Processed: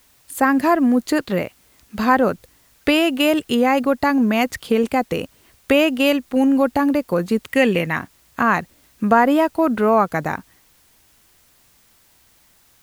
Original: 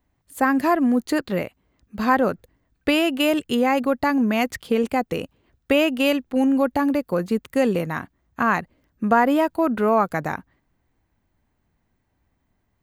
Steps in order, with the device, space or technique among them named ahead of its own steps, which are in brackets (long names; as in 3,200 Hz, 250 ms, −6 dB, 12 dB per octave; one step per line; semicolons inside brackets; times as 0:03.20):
0:07.49–0:07.96: flat-topped bell 2,400 Hz +9 dB 1.1 octaves
noise-reduction cassette on a plain deck (one half of a high-frequency compander encoder only; tape wow and flutter 16 cents; white noise bed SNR 37 dB)
level +3 dB